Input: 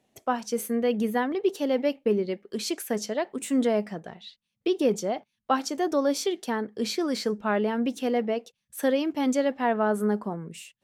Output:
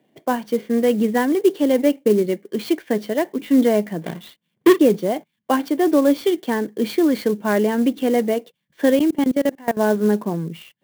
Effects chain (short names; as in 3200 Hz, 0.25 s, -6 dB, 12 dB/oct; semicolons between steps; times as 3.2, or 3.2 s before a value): 4.02–4.79 half-waves squared off; speaker cabinet 110–3700 Hz, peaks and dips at 160 Hz +8 dB, 310 Hz +7 dB, 800 Hz -4 dB; notch comb 1300 Hz; 8.99–9.77 level quantiser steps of 23 dB; clock jitter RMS 0.025 ms; gain +7 dB